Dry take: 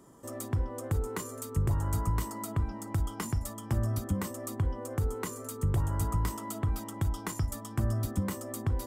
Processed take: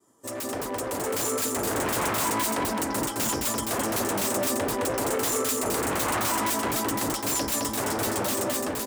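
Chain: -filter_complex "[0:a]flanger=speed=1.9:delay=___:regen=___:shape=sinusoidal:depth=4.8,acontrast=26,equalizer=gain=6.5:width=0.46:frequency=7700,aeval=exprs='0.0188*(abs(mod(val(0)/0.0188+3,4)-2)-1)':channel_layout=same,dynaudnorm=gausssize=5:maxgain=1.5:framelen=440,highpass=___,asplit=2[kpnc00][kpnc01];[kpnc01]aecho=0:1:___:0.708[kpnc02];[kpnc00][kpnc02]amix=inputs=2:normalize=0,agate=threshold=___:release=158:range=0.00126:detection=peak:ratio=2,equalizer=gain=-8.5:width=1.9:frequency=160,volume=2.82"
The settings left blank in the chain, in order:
2.5, 63, 100, 214, 0.0158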